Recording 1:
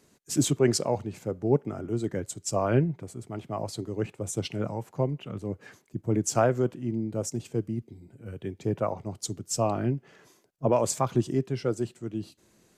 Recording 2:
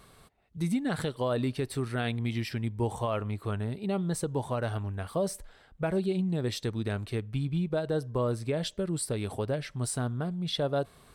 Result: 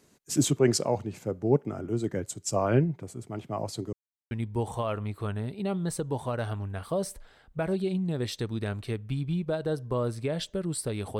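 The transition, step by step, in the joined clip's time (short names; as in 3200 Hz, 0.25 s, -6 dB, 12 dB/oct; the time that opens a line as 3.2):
recording 1
3.93–4.31 mute
4.31 switch to recording 2 from 2.55 s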